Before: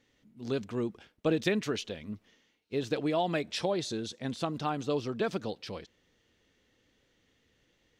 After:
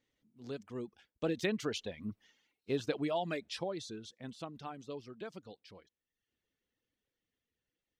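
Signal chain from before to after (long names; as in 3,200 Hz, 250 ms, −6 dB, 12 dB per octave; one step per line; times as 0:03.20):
source passing by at 0:02.31, 7 m/s, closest 4.4 metres
reverb reduction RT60 0.7 s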